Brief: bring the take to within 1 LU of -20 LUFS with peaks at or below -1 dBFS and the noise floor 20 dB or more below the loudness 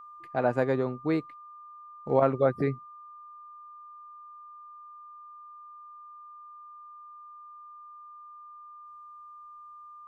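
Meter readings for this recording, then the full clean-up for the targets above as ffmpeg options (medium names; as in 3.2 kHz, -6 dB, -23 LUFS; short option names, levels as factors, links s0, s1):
steady tone 1.2 kHz; tone level -45 dBFS; loudness -28.0 LUFS; peak level -9.5 dBFS; loudness target -20.0 LUFS
-> -af "bandreject=f=1200:w=30"
-af "volume=2.51"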